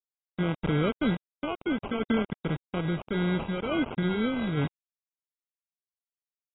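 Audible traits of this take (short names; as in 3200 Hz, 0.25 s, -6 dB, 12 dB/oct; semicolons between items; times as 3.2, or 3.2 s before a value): a quantiser's noise floor 6-bit, dither none; random-step tremolo; aliases and images of a low sample rate 1800 Hz, jitter 0%; AAC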